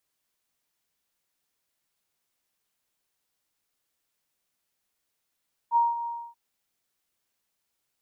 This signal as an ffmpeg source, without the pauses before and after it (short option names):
-f lavfi -i "aevalsrc='0.141*sin(2*PI*938*t)':d=0.634:s=44100,afade=t=in:d=0.051,afade=t=out:st=0.051:d=0.187:silence=0.251,afade=t=out:st=0.35:d=0.284"